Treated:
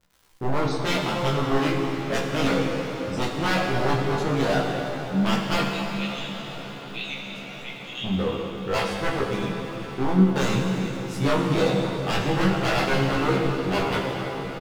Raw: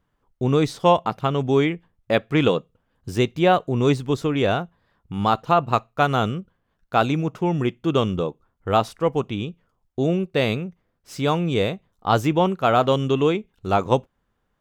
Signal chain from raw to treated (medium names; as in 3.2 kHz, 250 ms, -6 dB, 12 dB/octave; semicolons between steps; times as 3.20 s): chunks repeated in reverse 209 ms, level -13.5 dB; 5.66–8.04 s: Chebyshev high-pass 1.9 kHz, order 10; spectral gate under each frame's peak -25 dB strong; wavefolder -18 dBFS; chorus voices 6, 0.74 Hz, delay 24 ms, depth 3.1 ms; crackle 130 per s -46 dBFS; doubling 15 ms -3 dB; echo that smears into a reverb 1061 ms, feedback 69%, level -15.5 dB; plate-style reverb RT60 3.8 s, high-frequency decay 0.85×, DRR 1 dB